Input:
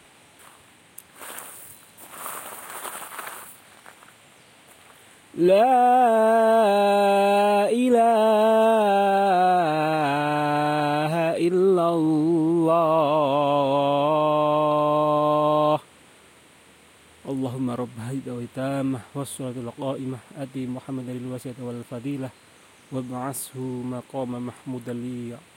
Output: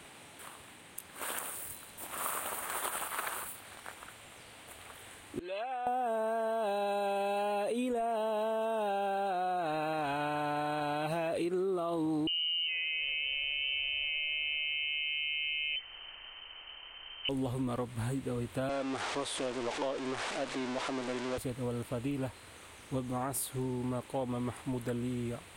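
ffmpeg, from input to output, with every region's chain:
-filter_complex "[0:a]asettb=1/sr,asplit=3[a][b][c];[a]atrim=end=5.394[d];[b]atrim=start=5.39:end=5.87,asetpts=PTS-STARTPTS,afade=t=in:d=0.004:c=qsin,afade=t=out:st=0.476:d=0.004:c=qsin,lowpass=2.4k,aderivative[e];[c]atrim=start=5.866[f];[d][e]acrossfade=d=0.004:c1=hsin:c2=qsin[g];[g][f]acrossfade=d=0.004:c1=qsin:c2=hsin,asettb=1/sr,asplit=3[h][i][j];[h]atrim=end=12.274[k];[i]atrim=start=12.27:end=17.29,asetpts=PTS-STARTPTS,afade=t=in:d=0.004:c=qsin,afade=t=out:st=5.016:d=0.004:c=qsin,equalizer=f=110:t=o:w=1.8:g=15,lowpass=f=2.7k:t=q:w=0.5098,lowpass=f=2.7k:t=q:w=0.6013,lowpass=f=2.7k:t=q:w=0.9,lowpass=f=2.7k:t=q:w=2.563,afreqshift=-3200[l];[j]atrim=start=17.286[m];[k][l]acrossfade=d=0.004:c1=hsin:c2=qsin[n];[n][m]acrossfade=d=0.004:c1=qsin:c2=hsin,asettb=1/sr,asplit=3[o][p][q];[o]atrim=end=18.694[r];[p]atrim=start=18.69:end=21.38,asetpts=PTS-STARTPTS,afade=t=in:d=0.004:c=qsin,afade=t=out:st=2.686:d=0.004:c=qsin,aeval=exprs='val(0)+0.5*0.0355*sgn(val(0))':c=same,lowpass=f=10k:w=0.5412,lowpass=f=10k:w=1.3066,acrossover=split=290 7700:gain=0.0891 1 0.0794[s][t][u];[s][t][u]amix=inputs=3:normalize=0[v];[q]atrim=start=21.376[w];[r][v]acrossfade=d=0.004:c1=hsin:c2=qsin[x];[x][w]acrossfade=d=0.004:c1=qsin:c2=hsin,asubboost=boost=9:cutoff=54,alimiter=limit=-18dB:level=0:latency=1:release=68,acompressor=threshold=-31dB:ratio=6"

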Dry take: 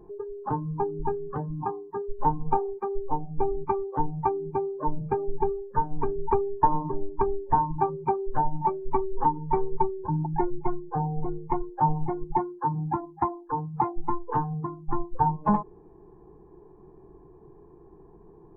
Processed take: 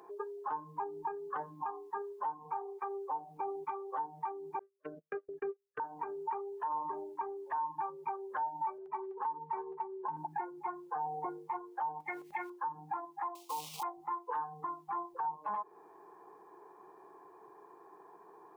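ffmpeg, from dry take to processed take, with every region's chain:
-filter_complex "[0:a]asettb=1/sr,asplit=3[a][b][c];[a]atrim=end=4.594[d];[b]atrim=start=4.59:end=5.8,asetpts=PTS-STARTPTS,afade=t=in:d=0.004:c=qsin,afade=t=out:st=1.206:d=0.004:c=qsin,agate=range=-42dB:threshold=-27dB:ratio=16:release=100:detection=peak,asuperstop=centerf=920:order=4:qfactor=1.3,highshelf=f=2.1k:g=-9[e];[c]atrim=start=5.796[f];[d][e]acrossfade=d=0.004:c1=hsin:c2=qsin[g];[g][f]acrossfade=d=0.004:c1=qsin:c2=hsin,asettb=1/sr,asplit=3[h][i][j];[h]atrim=end=8.784[k];[i]atrim=start=8.78:end=10.17,asetpts=PTS-STARTPTS,afade=t=in:d=0.004:c=qsin,afade=t=out:st=1.386:d=0.004:c=qsin,lowpass=2k,aecho=1:1:4.7:0.54,atrim=end_sample=61299,acompressor=threshold=-25dB:ratio=2:attack=3.2:release=140:knee=1:detection=peak[l];[j]atrim=start=10.166[m];[k][l]acrossfade=d=0.004:c1=hsin:c2=qsin[n];[n][m]acrossfade=d=0.004:c1=qsin:c2=hsin,asettb=1/sr,asplit=3[o][p][q];[o]atrim=end=12.004[r];[p]atrim=start=12:end=12.5,asetpts=PTS-STARTPTS,afade=t=in:d=0.004:c=qsin,afade=t=out:st=0.496:d=0.004:c=qsin,highshelf=f=1.5k:t=q:w=3:g=12,acompressor=threshold=-30dB:ratio=5:attack=3.2:release=140:knee=1:detection=peak[s];[q]atrim=start=12.496[t];[r][s]acrossfade=d=0.004:c1=hsin:c2=qsin[u];[u][t]acrossfade=d=0.004:c1=qsin:c2=hsin,asettb=1/sr,asplit=3[v][w][x];[v]atrim=end=13.354[y];[w]atrim=start=13.35:end=13.83,asetpts=PTS-STARTPTS,afade=t=in:d=0.004:c=qsin,afade=t=out:st=0.476:d=0.004:c=qsin,equalizer=f=60:w=0.45:g=2.5,acrusher=bits=4:mode=log:mix=0:aa=0.000001,asuperstop=centerf=1600:order=4:qfactor=0.87[z];[x]atrim=start=13.826[aa];[y][z]acrossfade=d=0.004:c1=hsin:c2=qsin[ab];[ab][aa]acrossfade=d=0.004:c1=qsin:c2=hsin,highpass=1.1k,acompressor=threshold=-40dB:ratio=3,alimiter=level_in=15.5dB:limit=-24dB:level=0:latency=1:release=52,volume=-15.5dB,volume=11dB"

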